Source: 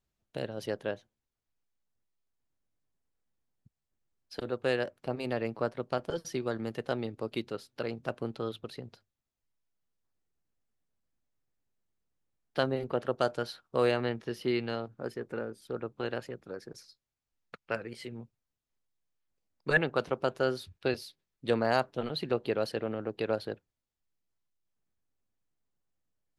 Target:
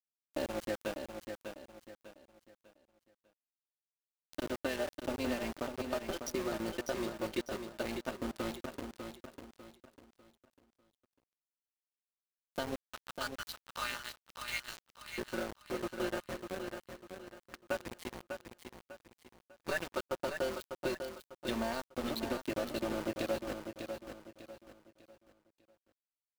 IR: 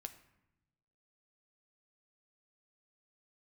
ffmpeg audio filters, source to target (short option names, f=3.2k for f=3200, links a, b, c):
-filter_complex "[0:a]asettb=1/sr,asplit=3[a][b][c];[a]atrim=end=12.754[d];[b]atrim=start=12.75:end=15.18,asetpts=PTS-STARTPTS,afade=t=in:d=0.004:c=qsin,afade=t=out:st=2.426:d=0.004:c=qsin,highpass=f=1.2k:w=0.5412,highpass=f=1.2k:w=1.3066[e];[c]atrim=start=15.176[f];[d][e]acrossfade=d=0.004:c1=hsin:c2=qsin[g];[g][f]acrossfade=d=0.004:c1=qsin:c2=hsin,adynamicequalizer=threshold=0.00316:dfrequency=1900:dqfactor=2.2:tfrequency=1900:tqfactor=2.2:attack=5:release=100:ratio=0.375:range=3:mode=cutabove:tftype=bell,aecho=1:1:3.3:0.88,acompressor=threshold=-30dB:ratio=16,flanger=delay=3.3:depth=2.4:regen=30:speed=0.22:shape=sinusoidal,tremolo=f=170:d=0.462,aeval=exprs='val(0)+0.00112*(sin(2*PI*50*n/s)+sin(2*PI*2*50*n/s)/2+sin(2*PI*3*50*n/s)/3+sin(2*PI*4*50*n/s)/4+sin(2*PI*5*50*n/s)/5)':c=same,aeval=exprs='val(0)*gte(abs(val(0)),0.00841)':c=same,aecho=1:1:598|1196|1794|2392:0.447|0.156|0.0547|0.0192,volume=4dB"